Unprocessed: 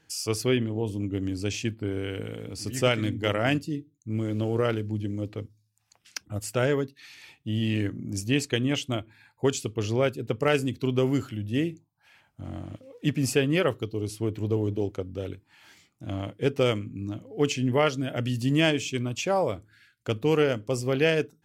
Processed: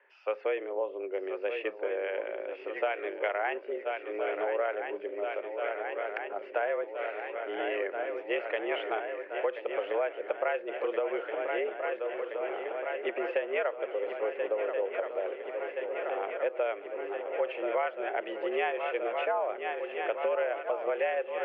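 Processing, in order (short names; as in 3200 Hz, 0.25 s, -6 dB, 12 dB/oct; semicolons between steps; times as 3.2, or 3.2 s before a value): swung echo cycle 1.373 s, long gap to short 3:1, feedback 72%, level -12 dB; 8.41–8.9 transient shaper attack -5 dB, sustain +5 dB; mistuned SSB +93 Hz 370–2300 Hz; compressor 6:1, threshold -31 dBFS, peak gain reduction 12 dB; gain +4 dB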